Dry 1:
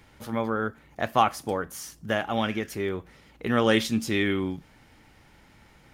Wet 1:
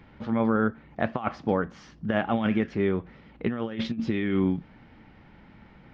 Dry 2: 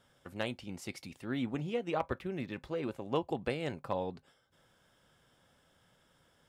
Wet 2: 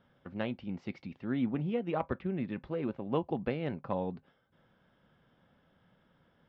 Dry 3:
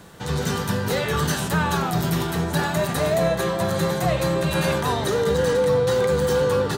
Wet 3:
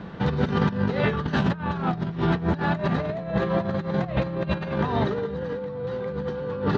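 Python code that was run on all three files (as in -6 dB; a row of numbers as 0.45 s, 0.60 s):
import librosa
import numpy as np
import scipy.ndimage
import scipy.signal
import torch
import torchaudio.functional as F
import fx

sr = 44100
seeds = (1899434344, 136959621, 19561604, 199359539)

y = fx.peak_eq(x, sr, hz=200.0, db=7.0, octaves=0.84)
y = fx.over_compress(y, sr, threshold_db=-24.0, ratio=-0.5)
y = scipy.ndimage.gaussian_filter1d(y, 2.5, mode='constant')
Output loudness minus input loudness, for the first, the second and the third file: -0.5 LU, +2.0 LU, -4.0 LU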